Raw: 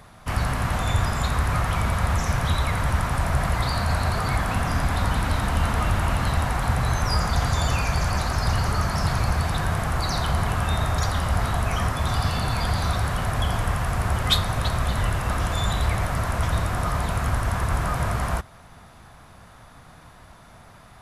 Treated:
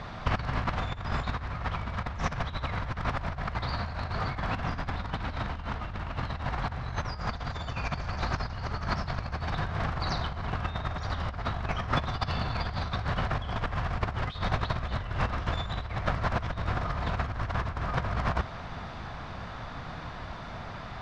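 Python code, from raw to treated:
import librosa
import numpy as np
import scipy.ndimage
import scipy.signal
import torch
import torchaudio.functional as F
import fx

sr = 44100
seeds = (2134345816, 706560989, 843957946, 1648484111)

y = scipy.signal.sosfilt(scipy.signal.butter(4, 4900.0, 'lowpass', fs=sr, output='sos'), x)
y = fx.over_compress(y, sr, threshold_db=-29.0, ratio=-0.5)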